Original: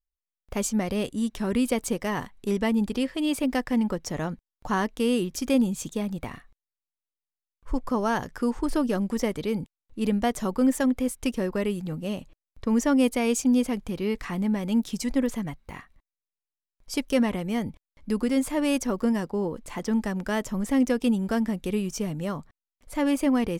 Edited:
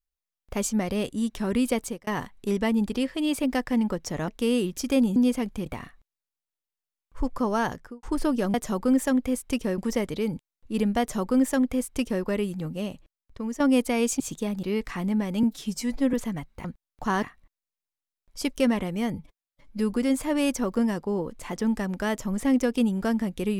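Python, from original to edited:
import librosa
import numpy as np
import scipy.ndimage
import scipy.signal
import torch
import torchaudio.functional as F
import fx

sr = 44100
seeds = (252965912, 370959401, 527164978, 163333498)

y = fx.studio_fade_out(x, sr, start_s=8.2, length_s=0.34)
y = fx.edit(y, sr, fx.fade_out_span(start_s=1.77, length_s=0.3),
    fx.move(start_s=4.28, length_s=0.58, to_s=15.75),
    fx.swap(start_s=5.74, length_s=0.43, other_s=13.47, other_length_s=0.5),
    fx.duplicate(start_s=10.27, length_s=1.24, to_s=9.05),
    fx.fade_out_to(start_s=12.02, length_s=0.85, floor_db=-11.5),
    fx.stretch_span(start_s=14.77, length_s=0.47, factor=1.5),
    fx.stretch_span(start_s=17.67, length_s=0.52, factor=1.5), tone=tone)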